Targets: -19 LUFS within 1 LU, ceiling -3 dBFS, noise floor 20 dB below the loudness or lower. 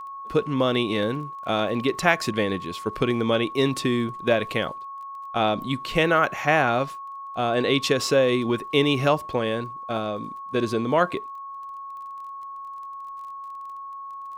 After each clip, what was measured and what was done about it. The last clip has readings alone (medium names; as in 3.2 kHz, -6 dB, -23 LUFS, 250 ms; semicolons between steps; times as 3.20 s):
tick rate 20 per s; steady tone 1.1 kHz; tone level -34 dBFS; loudness -24.0 LUFS; peak level -3.5 dBFS; loudness target -19.0 LUFS
-> de-click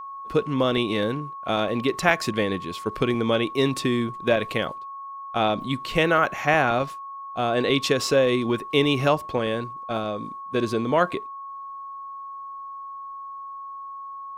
tick rate 0.070 per s; steady tone 1.1 kHz; tone level -34 dBFS
-> band-stop 1.1 kHz, Q 30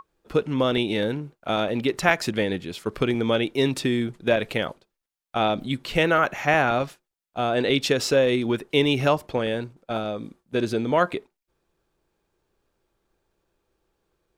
steady tone not found; loudness -24.0 LUFS; peak level -4.0 dBFS; loudness target -19.0 LUFS
-> trim +5 dB; peak limiter -3 dBFS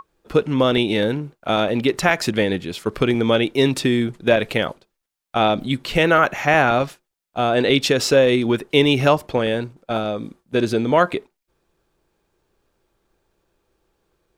loudness -19.0 LUFS; peak level -3.0 dBFS; noise floor -78 dBFS